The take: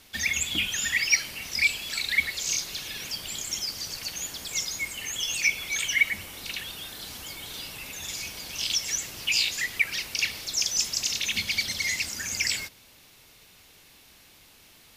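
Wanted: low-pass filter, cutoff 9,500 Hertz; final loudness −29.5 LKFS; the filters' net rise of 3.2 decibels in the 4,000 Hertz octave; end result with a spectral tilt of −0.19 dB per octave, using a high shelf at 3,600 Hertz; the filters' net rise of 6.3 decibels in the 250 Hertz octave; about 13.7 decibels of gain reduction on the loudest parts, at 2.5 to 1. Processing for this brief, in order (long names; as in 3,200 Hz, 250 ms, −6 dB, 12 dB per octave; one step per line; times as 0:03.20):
low-pass filter 9,500 Hz
parametric band 250 Hz +8 dB
high-shelf EQ 3,600 Hz −6.5 dB
parametric band 4,000 Hz +9 dB
downward compressor 2.5 to 1, threshold −38 dBFS
level +5.5 dB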